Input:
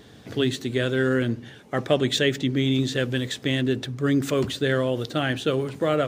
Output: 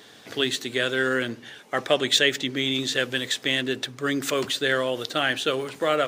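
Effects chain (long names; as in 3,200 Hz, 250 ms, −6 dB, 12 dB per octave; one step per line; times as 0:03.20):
high-pass filter 960 Hz 6 dB per octave
level +5.5 dB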